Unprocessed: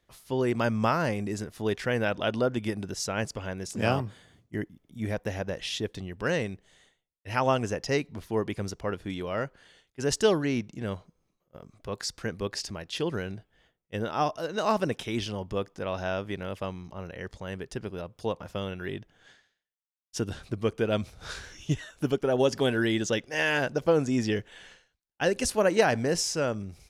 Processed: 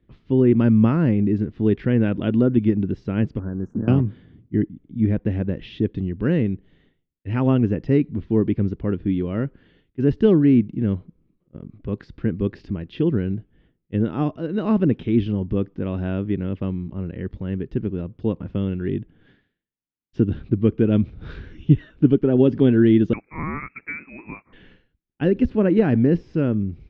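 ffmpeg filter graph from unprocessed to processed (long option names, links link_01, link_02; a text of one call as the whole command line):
ffmpeg -i in.wav -filter_complex "[0:a]asettb=1/sr,asplit=3[link_01][link_02][link_03];[link_01]atrim=end=3.394[link_04];[link_02]atrim=start=3.39:end=3.88,asetpts=PTS-STARTPTS,afade=type=in:duration=0.004:curve=qsin,afade=type=out:start_time=0.486:duration=0.004:curve=qsin,acompressor=threshold=-30dB:ratio=12:attack=3.2:release=140:knee=1:detection=peak,aeval=exprs='sgn(val(0))*max(abs(val(0))-0.00422,0)':channel_layout=same,asuperstop=centerf=3200:order=20:qfactor=0.77[link_05];[link_03]atrim=start=3.876[link_06];[link_04][link_05]acrossfade=duration=0.004:curve1=hsin:curve2=qsin[link_07];[link_07][link_06]acrossfade=duration=0.004:curve1=qsin:curve2=hsin,asettb=1/sr,asplit=3[link_08][link_09][link_10];[link_08]atrim=end=23.134[link_11];[link_09]atrim=start=23.13:end=24.53,asetpts=PTS-STARTPTS,afade=type=in:duration=0.004:curve=qsin,afade=type=out:start_time=1.396:duration=0.004:curve=qsin,highpass=700,lowpass=frequency=2400:width_type=q:width=0.5098,lowpass=frequency=2400:width_type=q:width=0.6013,lowpass=frequency=2400:width_type=q:width=0.9,lowpass=frequency=2400:width_type=q:width=2.563,afreqshift=-2800[link_12];[link_10]atrim=start=24.526[link_13];[link_11][link_12]acrossfade=duration=0.004:curve1=hsin:curve2=qsin[link_14];[link_14][link_13]acrossfade=duration=0.004:curve1=qsin:curve2=hsin,deesser=0.8,lowpass=frequency=3200:width=0.5412,lowpass=frequency=3200:width=1.3066,lowshelf=frequency=450:width_type=q:width=1.5:gain=14,volume=-2.5dB" out.wav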